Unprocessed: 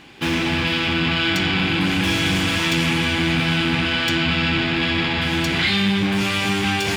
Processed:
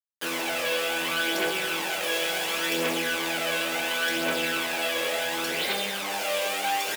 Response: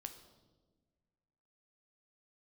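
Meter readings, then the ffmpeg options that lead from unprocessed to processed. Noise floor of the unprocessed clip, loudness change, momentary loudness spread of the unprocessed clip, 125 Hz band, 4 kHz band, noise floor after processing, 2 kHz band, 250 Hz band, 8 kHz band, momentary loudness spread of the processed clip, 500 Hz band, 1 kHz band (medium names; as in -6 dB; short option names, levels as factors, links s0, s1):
-22 dBFS, -7.0 dB, 2 LU, -25.0 dB, -7.5 dB, -31 dBFS, -6.5 dB, -15.0 dB, +1.0 dB, 2 LU, -1.5 dB, -4.0 dB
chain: -filter_complex "[0:a]equalizer=f=16000:w=0.66:g=12,acrusher=bits=3:mix=0:aa=0.000001,aphaser=in_gain=1:out_gain=1:delay=1.9:decay=0.49:speed=0.7:type=triangular,highpass=f=510:t=q:w=3.7,asplit=2[s0][s1];[s1]adelay=24,volume=0.266[s2];[s0][s2]amix=inputs=2:normalize=0[s3];[1:a]atrim=start_sample=2205,afade=t=out:st=0.24:d=0.01,atrim=end_sample=11025,asetrate=83790,aresample=44100[s4];[s3][s4]afir=irnorm=-1:irlink=0"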